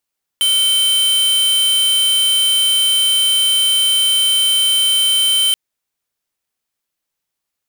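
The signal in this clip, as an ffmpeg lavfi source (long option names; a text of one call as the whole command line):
ffmpeg -f lavfi -i "aevalsrc='0.2*(2*lt(mod(3090*t,1),0.5)-1)':duration=5.13:sample_rate=44100" out.wav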